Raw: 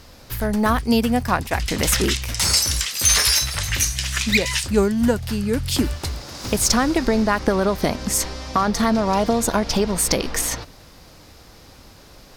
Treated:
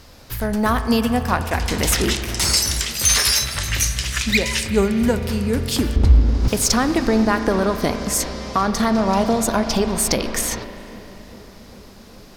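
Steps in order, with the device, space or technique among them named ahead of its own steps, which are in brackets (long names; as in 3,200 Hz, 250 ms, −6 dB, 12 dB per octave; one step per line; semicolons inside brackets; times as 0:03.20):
dub delay into a spring reverb (feedback echo with a low-pass in the loop 400 ms, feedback 79%, low-pass 1,200 Hz, level −19 dB; spring reverb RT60 3.4 s, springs 36 ms, chirp 75 ms, DRR 8.5 dB)
0:05.96–0:06.48: RIAA equalisation playback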